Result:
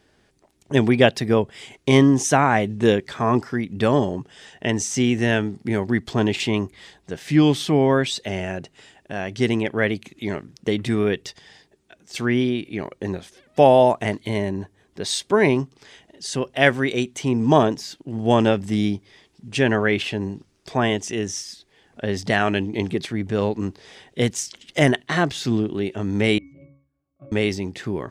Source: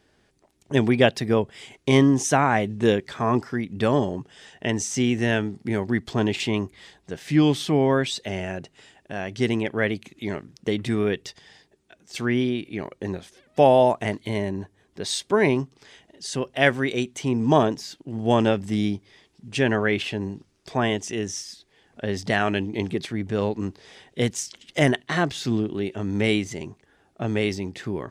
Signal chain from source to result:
0:26.38–0:27.32: resonances in every octave C#, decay 0.47 s
level +2.5 dB

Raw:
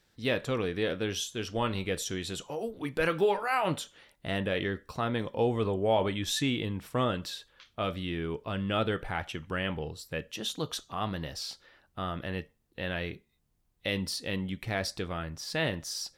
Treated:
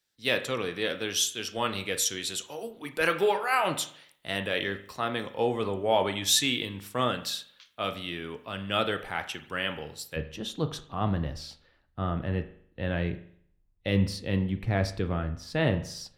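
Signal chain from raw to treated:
spectral tilt +2 dB per octave, from 0:10.15 −2 dB per octave
convolution reverb RT60 0.75 s, pre-delay 40 ms, DRR 10.5 dB
multiband upward and downward expander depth 40%
level +1.5 dB

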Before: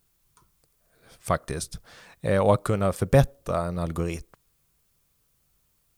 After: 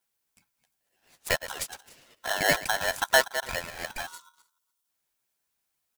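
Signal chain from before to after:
delay that plays each chunk backwards 126 ms, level −11 dB
high-pass filter 230 Hz 12 dB per octave
harmonic and percussive parts rebalanced harmonic −13 dB
on a send: single-tap delay 289 ms −20.5 dB
on the sum: leveller curve on the samples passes 1
time-frequency box erased 0:04.07–0:04.88, 320–3,900 Hz
flanger swept by the level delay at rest 11.5 ms, full sweep at −21.5 dBFS
ring modulator with a square carrier 1,200 Hz

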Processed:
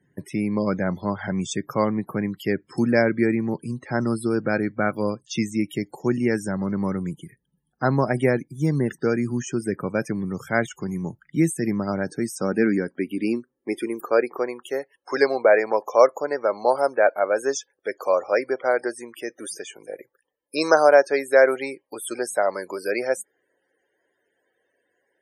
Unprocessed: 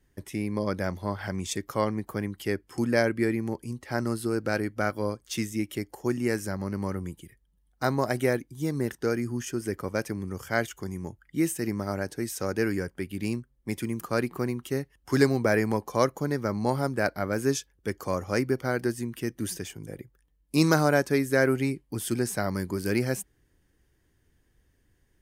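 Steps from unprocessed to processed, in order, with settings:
low-shelf EQ 280 Hz −3 dB
spectral peaks only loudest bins 64
high-pass filter sweep 150 Hz → 560 Hz, 0:12.06–0:14.59
level +4.5 dB

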